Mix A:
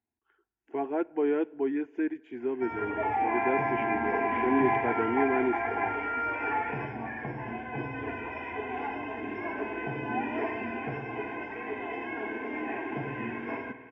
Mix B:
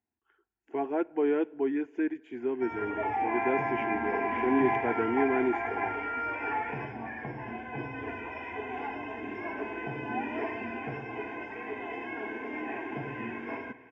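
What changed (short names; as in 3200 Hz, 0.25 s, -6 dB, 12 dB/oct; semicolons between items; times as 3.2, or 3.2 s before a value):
background: send -6.5 dB; master: remove air absorption 75 m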